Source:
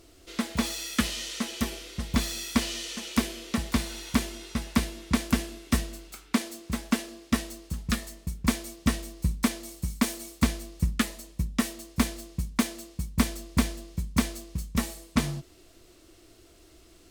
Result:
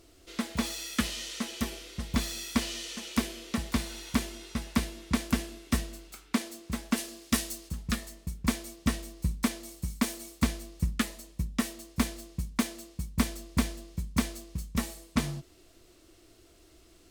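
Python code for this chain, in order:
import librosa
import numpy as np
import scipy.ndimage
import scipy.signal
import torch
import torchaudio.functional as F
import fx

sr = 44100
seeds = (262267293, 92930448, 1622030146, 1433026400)

y = fx.high_shelf(x, sr, hz=fx.line((6.96, 4400.0), (7.68, 3000.0)), db=10.5, at=(6.96, 7.68), fade=0.02)
y = y * librosa.db_to_amplitude(-3.0)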